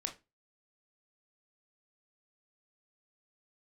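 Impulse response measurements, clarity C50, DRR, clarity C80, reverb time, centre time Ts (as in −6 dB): 12.5 dB, 4.0 dB, 21.0 dB, 0.25 s, 12 ms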